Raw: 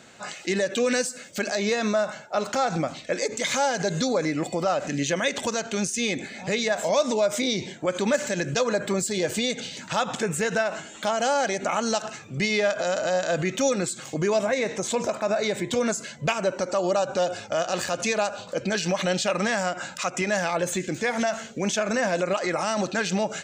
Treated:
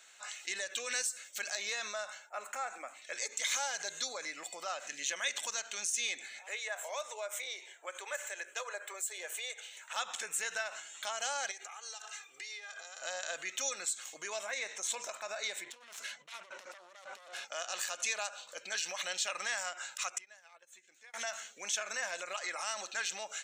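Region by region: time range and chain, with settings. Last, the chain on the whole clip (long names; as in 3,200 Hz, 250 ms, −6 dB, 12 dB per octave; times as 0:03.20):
0:02.29–0:03.02: Chebyshev high-pass filter 200 Hz, order 6 + flat-topped bell 4,300 Hz −14 dB 1.2 octaves
0:06.39–0:09.96: Butterworth high-pass 370 Hz + parametric band 4,800 Hz −14 dB 0.91 octaves
0:11.51–0:13.02: bass and treble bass −14 dB, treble 0 dB + comb filter 2.5 ms, depth 74% + downward compressor 12 to 1, threshold −32 dBFS
0:15.64–0:17.45: phase distortion by the signal itself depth 0.38 ms + compressor whose output falls as the input rises −35 dBFS + high-frequency loss of the air 90 metres
0:20.18–0:21.14: noise gate −24 dBFS, range −18 dB + bass and treble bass −2 dB, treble −3 dB + downward compressor 16 to 1, threshold −40 dBFS
whole clip: Bessel high-pass filter 1,500 Hz, order 2; high-shelf EQ 7,300 Hz +6.5 dB; notch filter 4,800 Hz, Q 8.8; level −6.5 dB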